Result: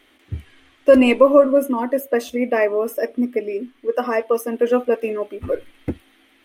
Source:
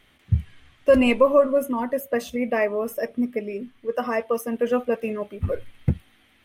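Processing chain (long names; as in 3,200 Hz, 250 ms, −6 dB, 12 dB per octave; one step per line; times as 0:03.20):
low shelf with overshoot 220 Hz −9 dB, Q 3
level +3 dB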